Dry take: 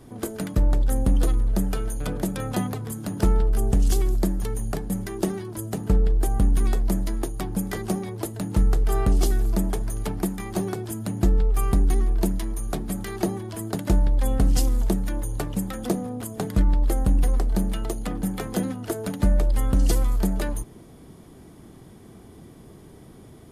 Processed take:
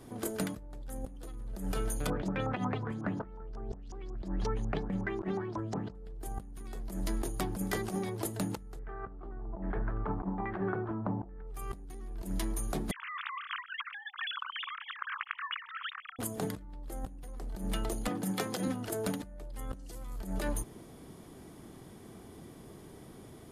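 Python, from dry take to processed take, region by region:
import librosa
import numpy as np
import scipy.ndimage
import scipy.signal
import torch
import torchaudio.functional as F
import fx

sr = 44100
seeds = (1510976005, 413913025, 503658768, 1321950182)

y = fx.chain(x, sr, fx.high_shelf(hz=2100.0, db=-10.5),
    fx.filter_lfo_lowpass(shape='saw_up', hz=5.5, low_hz=890.0, high_hz=6300.0, q=4.7), at=(2.1, 5.95))
y = fx.chain(y, sr, fx.filter_lfo_lowpass(shape='saw_down', hz=1.2, low_hz=830.0, high_hz=1900.0, q=3.3),
    fx.air_absorb(metres=320.0), at=(8.79, 11.47))
y = fx.chain(y, sr, fx.sine_speech(),
    fx.steep_highpass(hz=1100.0, slope=72),
    fx.over_compress(threshold_db=-37.0, ratio=-1.0), at=(12.91, 16.19))
y = fx.chain(y, sr, fx.highpass(hz=100.0, slope=24),
    fx.hum_notches(base_hz=50, count=8),
    fx.dynamic_eq(hz=4900.0, q=1.0, threshold_db=-51.0, ratio=4.0, max_db=4), at=(18.08, 18.68))
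y = fx.low_shelf(y, sr, hz=220.0, db=-5.5)
y = fx.over_compress(y, sr, threshold_db=-29.0, ratio=-0.5)
y = F.gain(torch.from_numpy(y), -5.5).numpy()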